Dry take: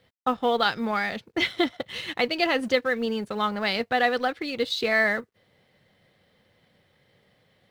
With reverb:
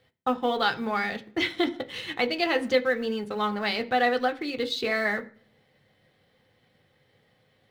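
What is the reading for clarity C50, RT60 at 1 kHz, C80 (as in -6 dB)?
17.5 dB, 0.40 s, 22.0 dB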